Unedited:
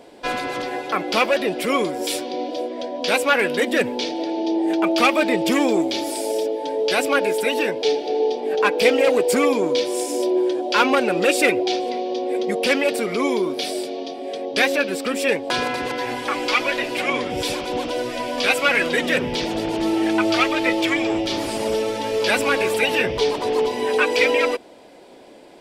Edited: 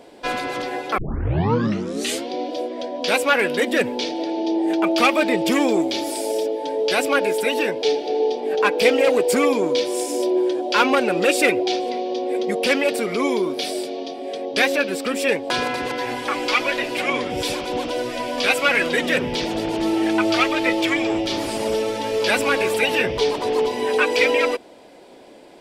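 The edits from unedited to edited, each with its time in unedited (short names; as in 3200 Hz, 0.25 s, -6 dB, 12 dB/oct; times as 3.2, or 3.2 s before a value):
0.98 tape start 1.32 s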